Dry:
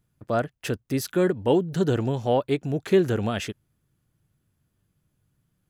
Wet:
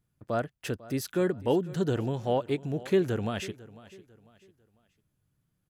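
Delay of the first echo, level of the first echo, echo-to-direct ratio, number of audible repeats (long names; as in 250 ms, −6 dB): 498 ms, −19.0 dB, −18.5 dB, 2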